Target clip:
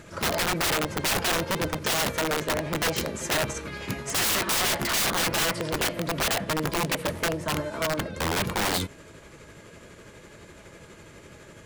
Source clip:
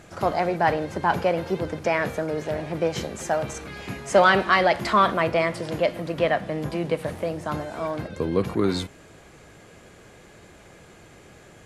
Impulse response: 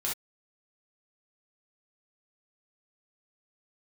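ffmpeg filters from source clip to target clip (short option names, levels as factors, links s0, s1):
-af "tremolo=f=12:d=0.34,asuperstop=centerf=750:order=20:qfactor=6.2,aeval=exprs='(mod(13.3*val(0)+1,2)-1)/13.3':c=same,volume=1.41"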